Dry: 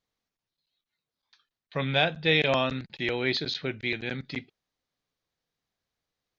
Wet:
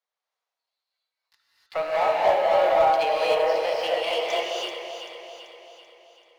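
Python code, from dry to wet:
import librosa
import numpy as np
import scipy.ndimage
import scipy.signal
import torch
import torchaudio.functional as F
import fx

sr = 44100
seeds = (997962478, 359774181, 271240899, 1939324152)

y = fx.pitch_glide(x, sr, semitones=8.5, runs='starting unshifted')
y = fx.env_lowpass_down(y, sr, base_hz=810.0, full_db=-25.0)
y = scipy.signal.sosfilt(scipy.signal.cheby2(4, 50, 220.0, 'highpass', fs=sr, output='sos'), y)
y = fx.high_shelf(y, sr, hz=2200.0, db=-8.0)
y = fx.leveller(y, sr, passes=2)
y = fx.echo_alternate(y, sr, ms=193, hz=900.0, feedback_pct=72, wet_db=-5.5)
y = fx.rev_gated(y, sr, seeds[0], gate_ms=330, shape='rising', drr_db=-4.5)
y = fx.slew_limit(y, sr, full_power_hz=120.0)
y = y * librosa.db_to_amplitude(3.5)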